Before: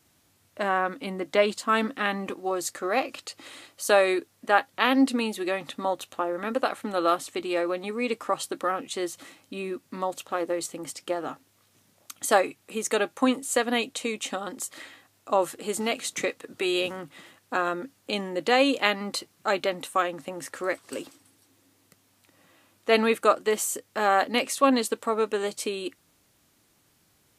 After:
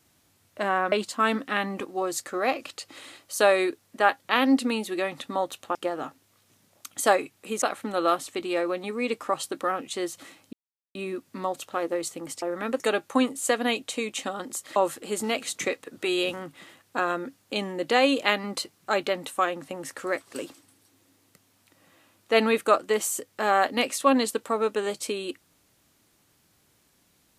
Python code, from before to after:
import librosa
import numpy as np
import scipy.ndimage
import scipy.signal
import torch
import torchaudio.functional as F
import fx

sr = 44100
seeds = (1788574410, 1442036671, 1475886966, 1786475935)

y = fx.edit(x, sr, fx.cut(start_s=0.92, length_s=0.49),
    fx.swap(start_s=6.24, length_s=0.38, other_s=11.0, other_length_s=1.87),
    fx.insert_silence(at_s=9.53, length_s=0.42),
    fx.cut(start_s=14.83, length_s=0.5), tone=tone)